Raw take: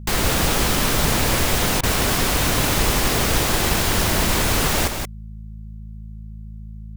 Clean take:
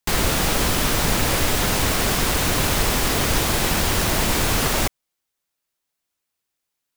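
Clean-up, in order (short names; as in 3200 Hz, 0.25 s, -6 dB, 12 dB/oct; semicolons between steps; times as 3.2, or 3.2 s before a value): de-hum 53.8 Hz, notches 4; interpolate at 1.81, 22 ms; inverse comb 0.176 s -6.5 dB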